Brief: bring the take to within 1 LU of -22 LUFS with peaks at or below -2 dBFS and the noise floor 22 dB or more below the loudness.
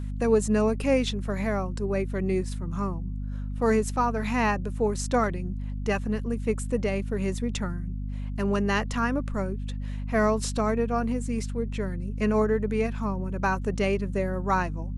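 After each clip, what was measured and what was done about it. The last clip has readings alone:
hum 50 Hz; harmonics up to 250 Hz; hum level -29 dBFS; loudness -27.5 LUFS; peak -10.0 dBFS; loudness target -22.0 LUFS
-> notches 50/100/150/200/250 Hz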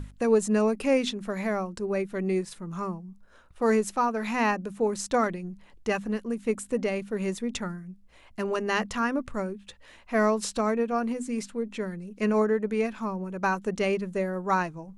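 hum none; loudness -28.0 LUFS; peak -11.5 dBFS; loudness target -22.0 LUFS
-> gain +6 dB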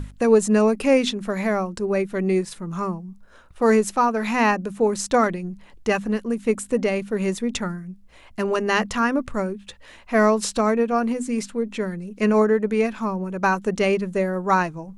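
loudness -22.0 LUFS; peak -5.5 dBFS; noise floor -48 dBFS

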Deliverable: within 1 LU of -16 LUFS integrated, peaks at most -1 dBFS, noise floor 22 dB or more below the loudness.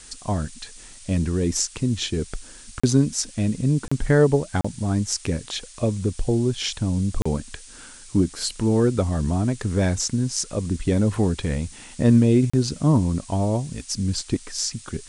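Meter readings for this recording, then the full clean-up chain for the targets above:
dropouts 5; longest dropout 35 ms; noise floor -44 dBFS; noise floor target -45 dBFS; loudness -23.0 LUFS; peak -5.0 dBFS; loudness target -16.0 LUFS
-> interpolate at 2.8/3.88/4.61/7.22/12.5, 35 ms; noise print and reduce 6 dB; gain +7 dB; limiter -1 dBFS

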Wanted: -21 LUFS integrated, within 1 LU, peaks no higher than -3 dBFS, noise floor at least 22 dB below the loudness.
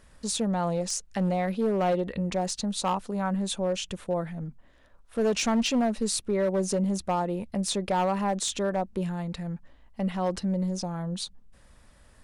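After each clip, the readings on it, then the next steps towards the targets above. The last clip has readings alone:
clipped 1.7%; flat tops at -20.0 dBFS; loudness -28.5 LUFS; peak -20.0 dBFS; loudness target -21.0 LUFS
-> clip repair -20 dBFS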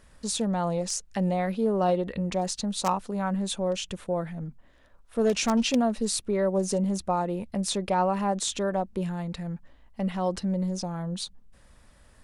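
clipped 0.0%; loudness -28.0 LUFS; peak -11.0 dBFS; loudness target -21.0 LUFS
-> gain +7 dB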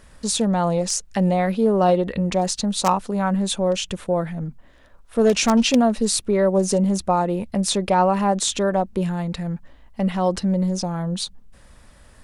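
loudness -21.0 LUFS; peak -4.0 dBFS; noise floor -50 dBFS

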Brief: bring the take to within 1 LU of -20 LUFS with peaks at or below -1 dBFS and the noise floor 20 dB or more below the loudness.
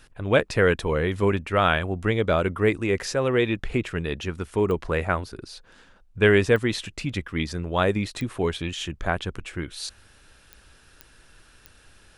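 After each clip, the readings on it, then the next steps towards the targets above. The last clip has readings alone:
clicks 6; loudness -24.5 LUFS; peak -6.0 dBFS; loudness target -20.0 LUFS
-> de-click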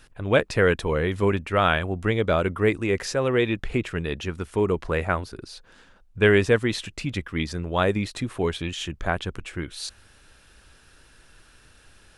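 clicks 0; loudness -24.5 LUFS; peak -6.0 dBFS; loudness target -20.0 LUFS
-> gain +4.5 dB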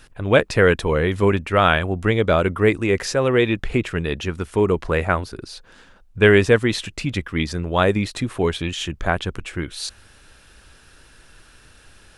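loudness -20.0 LUFS; peak -1.5 dBFS; noise floor -51 dBFS

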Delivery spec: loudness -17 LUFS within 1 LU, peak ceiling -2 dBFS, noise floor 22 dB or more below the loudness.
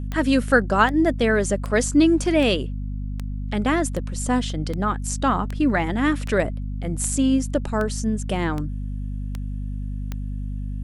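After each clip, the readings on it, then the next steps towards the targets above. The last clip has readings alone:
clicks 14; hum 50 Hz; harmonics up to 250 Hz; hum level -26 dBFS; loudness -23.0 LUFS; peak -4.0 dBFS; loudness target -17.0 LUFS
-> de-click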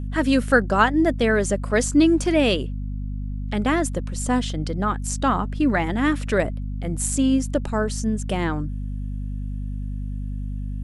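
clicks 0; hum 50 Hz; harmonics up to 250 Hz; hum level -26 dBFS
-> de-hum 50 Hz, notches 5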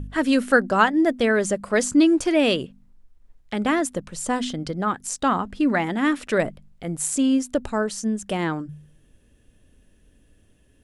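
hum none; loudness -22.5 LUFS; peak -4.0 dBFS; loudness target -17.0 LUFS
-> gain +5.5 dB; limiter -2 dBFS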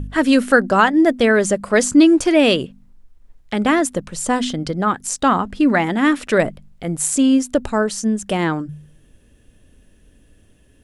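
loudness -17.0 LUFS; peak -2.0 dBFS; noise floor -53 dBFS

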